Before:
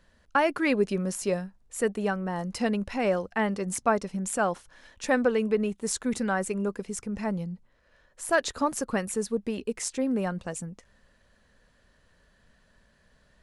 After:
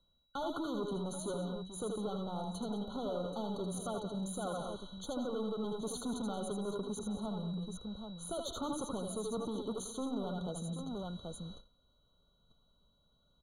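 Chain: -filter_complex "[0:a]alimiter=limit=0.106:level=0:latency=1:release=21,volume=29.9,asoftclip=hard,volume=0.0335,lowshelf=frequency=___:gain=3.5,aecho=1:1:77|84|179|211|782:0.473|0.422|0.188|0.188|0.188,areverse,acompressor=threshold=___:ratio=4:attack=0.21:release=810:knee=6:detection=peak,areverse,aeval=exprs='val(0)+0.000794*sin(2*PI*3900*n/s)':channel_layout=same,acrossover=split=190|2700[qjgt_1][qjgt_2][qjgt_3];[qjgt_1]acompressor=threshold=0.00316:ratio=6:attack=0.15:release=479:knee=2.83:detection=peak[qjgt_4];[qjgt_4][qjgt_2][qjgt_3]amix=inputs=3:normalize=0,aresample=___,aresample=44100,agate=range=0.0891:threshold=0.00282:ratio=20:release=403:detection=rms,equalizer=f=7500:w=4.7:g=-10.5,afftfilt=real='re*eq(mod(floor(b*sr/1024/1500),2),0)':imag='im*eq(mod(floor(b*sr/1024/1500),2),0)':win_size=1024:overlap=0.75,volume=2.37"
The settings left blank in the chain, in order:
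280, 0.00794, 32000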